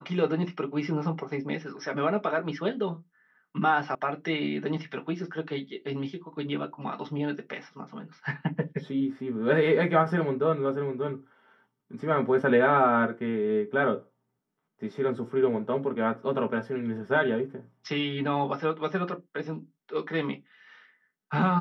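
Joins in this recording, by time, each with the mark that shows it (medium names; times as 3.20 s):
3.95 s: sound stops dead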